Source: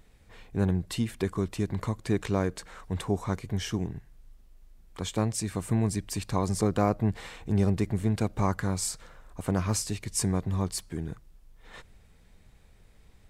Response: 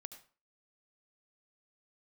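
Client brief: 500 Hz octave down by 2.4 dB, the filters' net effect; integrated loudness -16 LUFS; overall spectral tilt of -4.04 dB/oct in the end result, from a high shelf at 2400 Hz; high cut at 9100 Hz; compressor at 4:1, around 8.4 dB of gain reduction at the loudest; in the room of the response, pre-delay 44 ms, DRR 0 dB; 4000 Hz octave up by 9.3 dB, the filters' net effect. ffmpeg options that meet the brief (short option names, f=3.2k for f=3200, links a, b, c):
-filter_complex "[0:a]lowpass=9.1k,equalizer=f=500:t=o:g=-3.5,highshelf=f=2.4k:g=6,equalizer=f=4k:t=o:g=6.5,acompressor=threshold=-31dB:ratio=4,asplit=2[a][b];[1:a]atrim=start_sample=2205,adelay=44[c];[b][c]afir=irnorm=-1:irlink=0,volume=5.5dB[d];[a][d]amix=inputs=2:normalize=0,volume=16dB"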